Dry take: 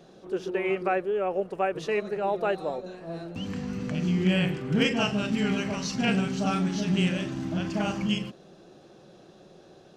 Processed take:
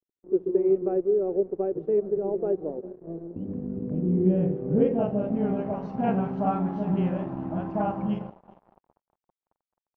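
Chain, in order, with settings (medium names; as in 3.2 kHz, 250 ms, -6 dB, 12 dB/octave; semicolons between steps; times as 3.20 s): multi-head delay 201 ms, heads first and second, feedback 52%, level -22 dB; crossover distortion -43 dBFS; low-pass sweep 380 Hz -> 880 Hz, 3.95–6.21 s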